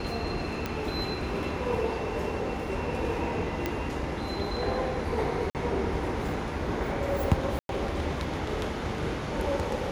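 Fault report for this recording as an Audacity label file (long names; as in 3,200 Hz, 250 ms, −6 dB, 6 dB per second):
0.660000	0.660000	click −16 dBFS
3.660000	3.660000	click −14 dBFS
5.500000	5.550000	drop-out 48 ms
7.590000	7.690000	drop-out 102 ms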